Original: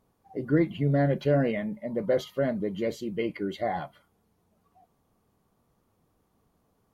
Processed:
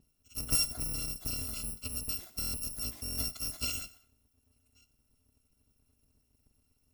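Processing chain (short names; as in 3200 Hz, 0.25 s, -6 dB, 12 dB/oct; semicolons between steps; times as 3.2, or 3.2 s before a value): FFT order left unsorted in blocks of 256 samples; EQ curve 110 Hz 0 dB, 160 Hz +7 dB, 1600 Hz -12 dB; 0.79–3.1 compressor 10:1, threshold -38 dBFS, peak gain reduction 10 dB; thinning echo 91 ms, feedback 31%, level -18 dB; stuck buffer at 2.4/3.04, samples 1024, times 5; gain +5.5 dB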